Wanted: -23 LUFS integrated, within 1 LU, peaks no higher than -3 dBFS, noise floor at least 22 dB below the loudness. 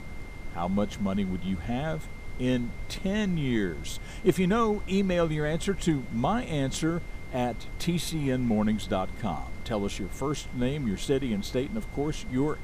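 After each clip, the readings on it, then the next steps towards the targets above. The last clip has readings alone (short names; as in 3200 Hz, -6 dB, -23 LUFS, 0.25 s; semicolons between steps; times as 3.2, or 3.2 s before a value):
steady tone 2100 Hz; tone level -49 dBFS; noise floor -39 dBFS; noise floor target -52 dBFS; loudness -29.5 LUFS; peak -11.0 dBFS; loudness target -23.0 LUFS
-> notch 2100 Hz, Q 30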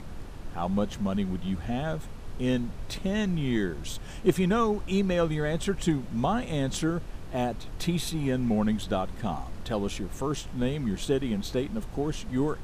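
steady tone none; noise floor -40 dBFS; noise floor target -52 dBFS
-> noise print and reduce 12 dB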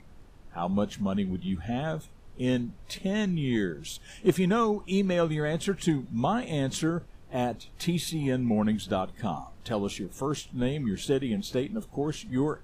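noise floor -50 dBFS; noise floor target -52 dBFS
-> noise print and reduce 6 dB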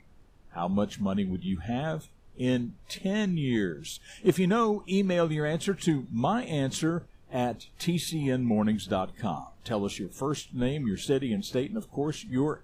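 noise floor -55 dBFS; loudness -29.5 LUFS; peak -11.5 dBFS; loudness target -23.0 LUFS
-> gain +6.5 dB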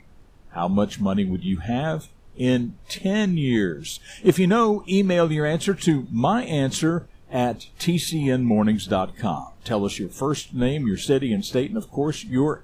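loudness -23.0 LUFS; peak -5.0 dBFS; noise floor -49 dBFS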